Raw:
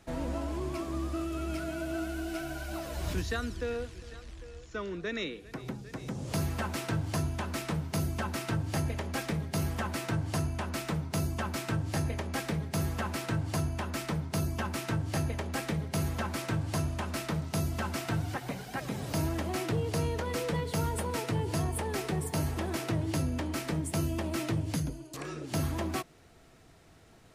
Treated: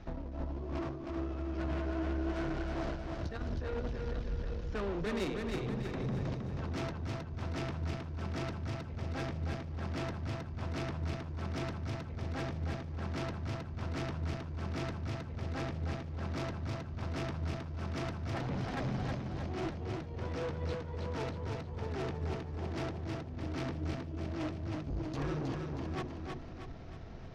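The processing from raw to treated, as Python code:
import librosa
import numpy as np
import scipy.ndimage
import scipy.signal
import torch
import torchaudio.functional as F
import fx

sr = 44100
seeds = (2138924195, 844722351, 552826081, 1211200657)

y = scipy.signal.sosfilt(scipy.signal.butter(8, 6100.0, 'lowpass', fs=sr, output='sos'), x)
y = fx.tilt_eq(y, sr, slope=-2.5)
y = fx.hum_notches(y, sr, base_hz=60, count=8)
y = fx.over_compress(y, sr, threshold_db=-32.0, ratio=-0.5)
y = fx.tube_stage(y, sr, drive_db=34.0, bias=0.55)
y = fx.echo_feedback(y, sr, ms=316, feedback_pct=47, wet_db=-4.0)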